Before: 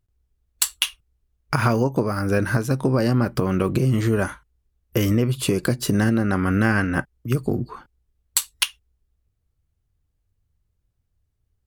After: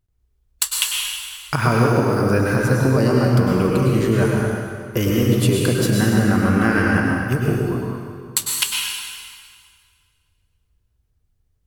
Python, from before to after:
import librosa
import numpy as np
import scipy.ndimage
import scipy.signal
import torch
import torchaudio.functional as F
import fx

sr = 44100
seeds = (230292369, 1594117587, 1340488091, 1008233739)

y = fx.rev_plate(x, sr, seeds[0], rt60_s=2.0, hf_ratio=0.9, predelay_ms=90, drr_db=-2.0)